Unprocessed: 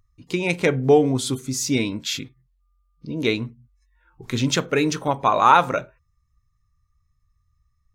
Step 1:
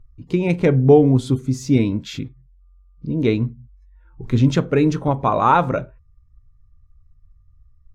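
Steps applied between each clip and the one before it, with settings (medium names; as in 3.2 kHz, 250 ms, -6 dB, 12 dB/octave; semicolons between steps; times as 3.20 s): tilt EQ -3.5 dB/octave; trim -1 dB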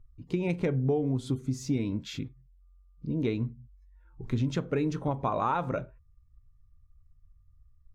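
compression 5:1, threshold -17 dBFS, peak gain reduction 10 dB; trim -7.5 dB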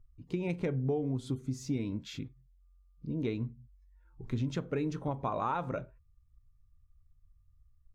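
endings held to a fixed fall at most 530 dB/s; trim -4.5 dB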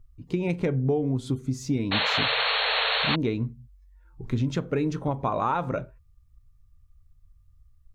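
painted sound noise, 1.91–3.16 s, 420–4400 Hz -32 dBFS; trim +7 dB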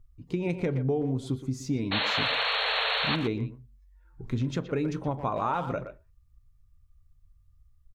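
speakerphone echo 120 ms, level -9 dB; trim -3 dB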